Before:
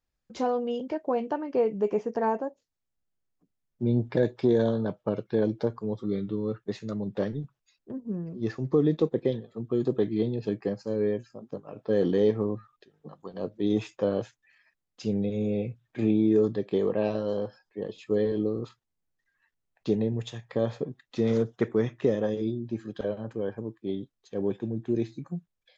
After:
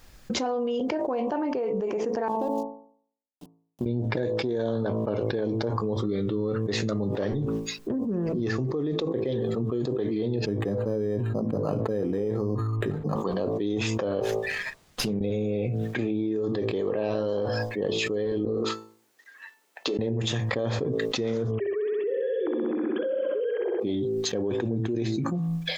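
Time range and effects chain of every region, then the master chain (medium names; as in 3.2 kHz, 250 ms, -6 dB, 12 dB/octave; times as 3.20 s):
2.28–3.86 s: companding laws mixed up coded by A + compression 10:1, threshold -36 dBFS + high-order bell 1.7 kHz -12 dB 1.2 oct
10.46–13.16 s: tone controls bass +7 dB, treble -12 dB + decimation joined by straight lines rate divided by 8×
14.20–15.21 s: compression 5:1, threshold -44 dBFS + sliding maximum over 3 samples
18.45–19.99 s: high-pass 300 Hz 24 dB/octave + compression, threshold -43 dBFS + feedback comb 440 Hz, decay 0.36 s
21.51–23.80 s: formants replaced by sine waves + flutter echo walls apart 11 m, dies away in 1.2 s
whole clip: de-hum 55.28 Hz, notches 22; dynamic bell 180 Hz, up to -7 dB, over -43 dBFS, Q 2.4; level flattener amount 100%; trim -8 dB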